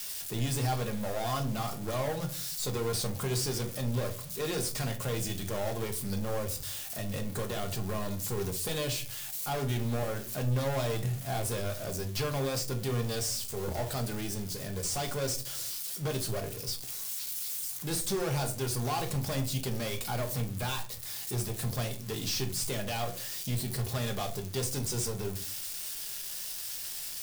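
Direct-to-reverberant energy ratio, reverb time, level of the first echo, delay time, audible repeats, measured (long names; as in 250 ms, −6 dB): 4.0 dB, 0.40 s, no echo audible, no echo audible, no echo audible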